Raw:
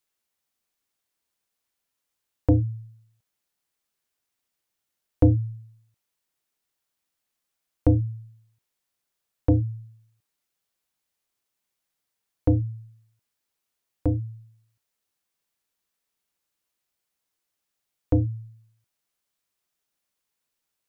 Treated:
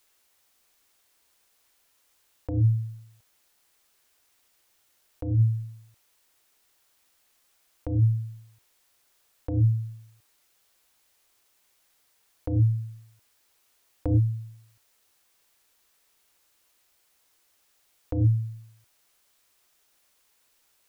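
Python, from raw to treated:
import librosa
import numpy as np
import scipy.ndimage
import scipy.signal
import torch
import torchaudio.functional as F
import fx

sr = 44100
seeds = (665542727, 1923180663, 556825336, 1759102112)

y = fx.peak_eq(x, sr, hz=170.0, db=-8.0, octaves=1.3)
y = fx.over_compress(y, sr, threshold_db=-31.0, ratio=-1.0)
y = F.gain(torch.from_numpy(y), 8.5).numpy()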